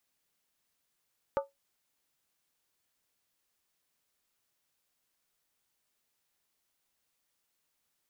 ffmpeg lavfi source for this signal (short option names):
-f lavfi -i "aevalsrc='0.0708*pow(10,-3*t/0.17)*sin(2*PI*555*t)+0.0398*pow(10,-3*t/0.135)*sin(2*PI*884.7*t)+0.0224*pow(10,-3*t/0.116)*sin(2*PI*1185.5*t)+0.0126*pow(10,-3*t/0.112)*sin(2*PI*1274.3*t)+0.00708*pow(10,-3*t/0.104)*sin(2*PI*1472.4*t)':d=0.63:s=44100"